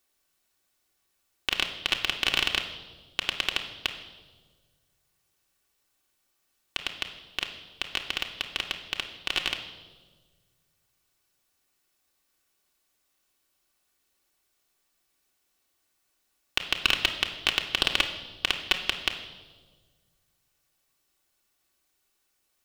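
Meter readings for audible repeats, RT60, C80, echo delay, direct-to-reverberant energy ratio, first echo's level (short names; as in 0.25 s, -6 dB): none, 1.5 s, 11.0 dB, none, 1.5 dB, none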